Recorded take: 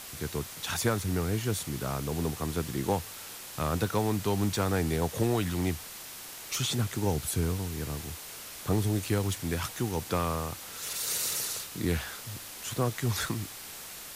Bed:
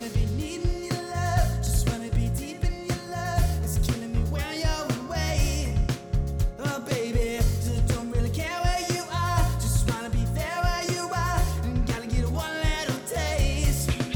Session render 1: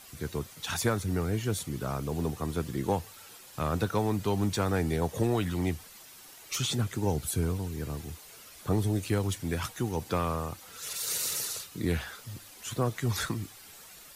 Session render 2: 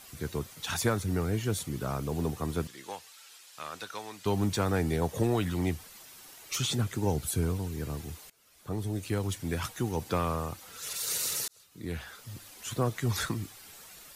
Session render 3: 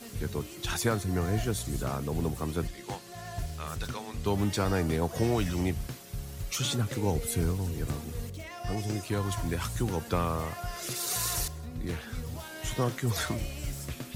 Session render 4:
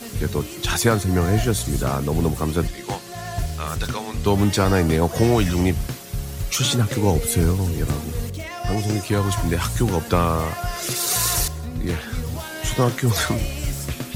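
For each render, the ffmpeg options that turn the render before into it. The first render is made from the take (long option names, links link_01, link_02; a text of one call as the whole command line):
ffmpeg -i in.wav -af "afftdn=noise_reduction=10:noise_floor=-44" out.wav
ffmpeg -i in.wav -filter_complex "[0:a]asettb=1/sr,asplit=3[link_01][link_02][link_03];[link_01]atrim=end=2.674[link_04];[link_02]atrim=start=2.67:end=4.26,asetpts=PTS-STARTPTS,afade=type=in:duration=0.004:curve=qsin,afade=type=out:start_time=1.586:duration=0.004:curve=qsin,bandpass=frequency=4300:width_type=q:width=0.51[link_05];[link_03]atrim=start=4.256[link_06];[link_04][link_05]acrossfade=duration=0.004:curve1=hsin:curve2=qsin[link_07];[link_07][link_06]acrossfade=duration=0.004:curve1=qsin:curve2=hsin,asplit=3[link_08][link_09][link_10];[link_08]atrim=end=8.3,asetpts=PTS-STARTPTS,afade=type=out:start_time=8.296:duration=0.004:curve=hsin:silence=0.0794328[link_11];[link_09]atrim=start=8.3:end=11.48,asetpts=PTS-STARTPTS,afade=type=in:duration=1.68:curve=qsin:silence=0.0794328,afade=type=out:start_time=3.176:duration=0.004:curve=hsin[link_12];[link_10]atrim=start=11.48,asetpts=PTS-STARTPTS,afade=type=in:duration=0.99[link_13];[link_11][link_12][link_13]concat=n=3:v=0:a=1" out.wav
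ffmpeg -i in.wav -i bed.wav -filter_complex "[1:a]volume=-12.5dB[link_01];[0:a][link_01]amix=inputs=2:normalize=0" out.wav
ffmpeg -i in.wav -af "volume=10dB" out.wav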